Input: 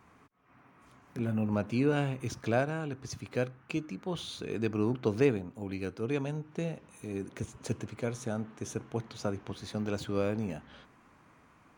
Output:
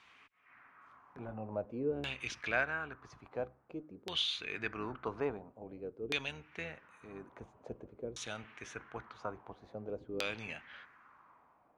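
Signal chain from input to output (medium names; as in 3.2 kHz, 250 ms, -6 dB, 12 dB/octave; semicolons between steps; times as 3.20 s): octave divider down 1 oct, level -6 dB; LFO low-pass saw down 0.49 Hz 370–3500 Hz; pre-emphasis filter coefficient 0.97; trim +12 dB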